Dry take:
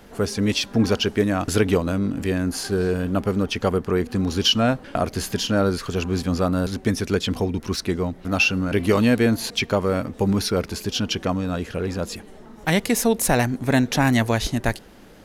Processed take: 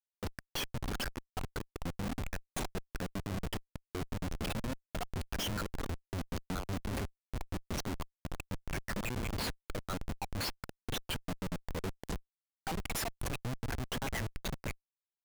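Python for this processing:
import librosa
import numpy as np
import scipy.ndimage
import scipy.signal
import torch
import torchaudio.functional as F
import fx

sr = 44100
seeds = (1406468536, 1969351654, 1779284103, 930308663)

y = fx.spec_dropout(x, sr, seeds[0], share_pct=57)
y = fx.over_compress(y, sr, threshold_db=-26.0, ratio=-1.0)
y = fx.step_gate(y, sr, bpm=164, pattern='..x.x.xxxxxxx', floor_db=-12.0, edge_ms=4.5)
y = fx.schmitt(y, sr, flips_db=-27.5)
y = fx.band_squash(y, sr, depth_pct=40, at=(6.34, 6.8))
y = y * librosa.db_to_amplitude(-4.5)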